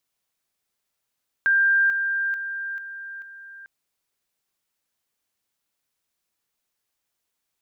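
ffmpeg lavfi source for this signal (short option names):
-f lavfi -i "aevalsrc='pow(10,(-15.5-6*floor(t/0.44))/20)*sin(2*PI*1590*t)':d=2.2:s=44100"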